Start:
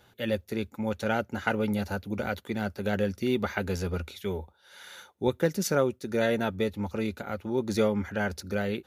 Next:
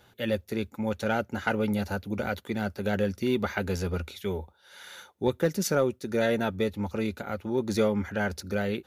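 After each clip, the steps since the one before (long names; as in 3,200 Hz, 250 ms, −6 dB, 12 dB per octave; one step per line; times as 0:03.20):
soft clipping −12.5 dBFS, distortion −25 dB
level +1 dB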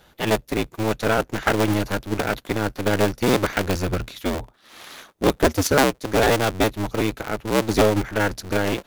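sub-harmonics by changed cycles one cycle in 2, inverted
in parallel at −10 dB: bit reduction 4 bits
on the sum: level +5 dB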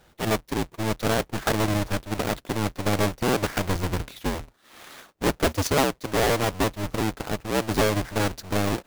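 each half-wave held at its own peak
level −8 dB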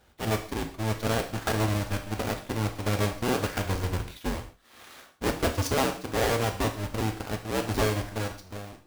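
fade-out on the ending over 1.00 s
reverb whose tail is shaped and stops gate 180 ms falling, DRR 4.5 dB
level −5 dB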